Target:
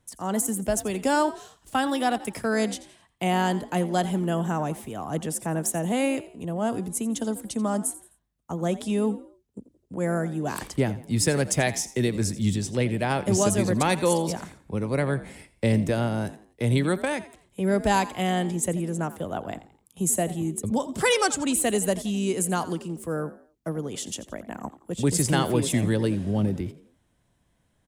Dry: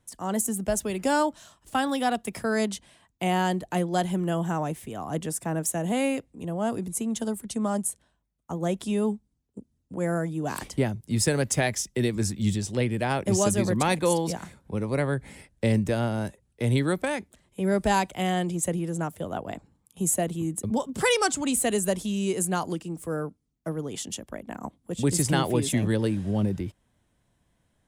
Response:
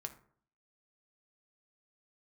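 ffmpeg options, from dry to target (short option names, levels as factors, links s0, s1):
-filter_complex "[0:a]asplit=4[s0][s1][s2][s3];[s1]adelay=85,afreqshift=53,volume=0.15[s4];[s2]adelay=170,afreqshift=106,volume=0.0537[s5];[s3]adelay=255,afreqshift=159,volume=0.0195[s6];[s0][s4][s5][s6]amix=inputs=4:normalize=0,volume=1.12"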